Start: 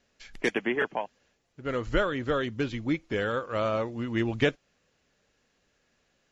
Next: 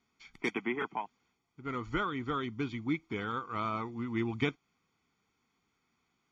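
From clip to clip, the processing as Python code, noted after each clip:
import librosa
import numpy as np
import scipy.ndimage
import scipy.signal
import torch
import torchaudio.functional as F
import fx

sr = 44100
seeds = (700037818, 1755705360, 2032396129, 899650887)

y = fx.highpass(x, sr, hz=190.0, slope=6)
y = fx.high_shelf(y, sr, hz=3500.0, db=-9.0)
y = y + 0.89 * np.pad(y, (int(0.9 * sr / 1000.0), 0))[:len(y)]
y = y * librosa.db_to_amplitude(-5.0)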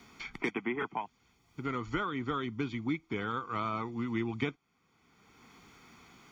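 y = fx.band_squash(x, sr, depth_pct=70)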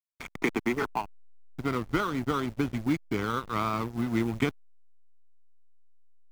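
y = fx.quant_companded(x, sr, bits=6)
y = fx.add_hum(y, sr, base_hz=50, snr_db=25)
y = fx.backlash(y, sr, play_db=-33.5)
y = y * librosa.db_to_amplitude(6.5)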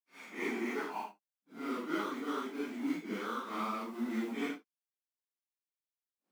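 y = fx.phase_scramble(x, sr, seeds[0], window_ms=200)
y = fx.brickwall_highpass(y, sr, low_hz=180.0)
y = y * librosa.db_to_amplitude(-7.0)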